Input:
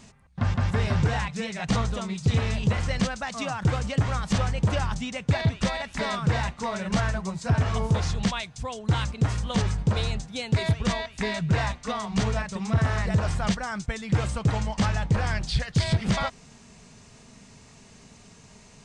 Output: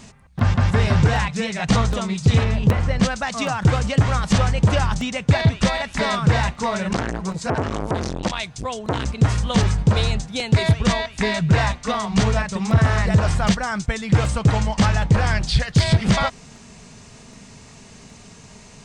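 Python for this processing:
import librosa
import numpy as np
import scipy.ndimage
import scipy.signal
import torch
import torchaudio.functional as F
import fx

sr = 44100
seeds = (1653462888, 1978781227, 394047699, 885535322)

y = fx.high_shelf(x, sr, hz=fx.line((2.43, 3100.0), (3.01, 2200.0)), db=-12.0, at=(2.43, 3.01), fade=0.02)
y = fx.buffer_crackle(y, sr, first_s=0.39, period_s=0.77, block=64, kind='repeat')
y = fx.transformer_sat(y, sr, knee_hz=660.0, at=(6.93, 9.06))
y = y * librosa.db_to_amplitude(7.0)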